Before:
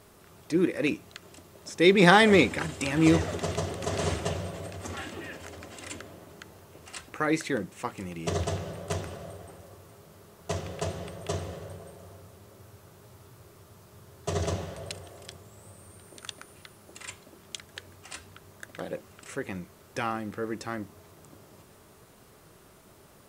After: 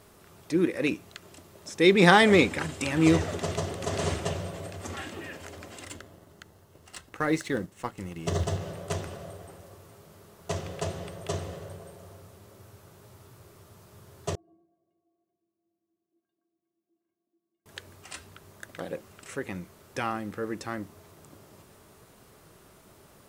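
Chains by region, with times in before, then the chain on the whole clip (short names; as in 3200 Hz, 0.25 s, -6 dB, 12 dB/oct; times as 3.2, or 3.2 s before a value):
5.85–8.61 G.711 law mismatch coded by A + low shelf 140 Hz +6 dB + notch 2400 Hz, Q 11
14.35–17.66 ladder band-pass 250 Hz, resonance 40% + metallic resonator 330 Hz, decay 0.28 s, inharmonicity 0.03
whole clip: dry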